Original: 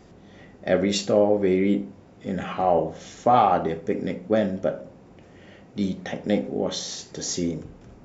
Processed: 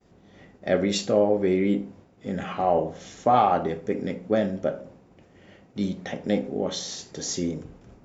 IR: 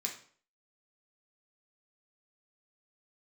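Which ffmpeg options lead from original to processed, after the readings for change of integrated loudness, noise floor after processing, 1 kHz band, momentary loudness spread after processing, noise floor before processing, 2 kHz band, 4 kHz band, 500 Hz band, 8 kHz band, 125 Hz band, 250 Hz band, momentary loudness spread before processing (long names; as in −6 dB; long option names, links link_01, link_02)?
−1.5 dB, −56 dBFS, −1.5 dB, 13 LU, −50 dBFS, −1.5 dB, −1.5 dB, −1.5 dB, can't be measured, −1.5 dB, −1.5 dB, 13 LU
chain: -af "agate=range=-33dB:threshold=-44dB:ratio=3:detection=peak,volume=-1.5dB"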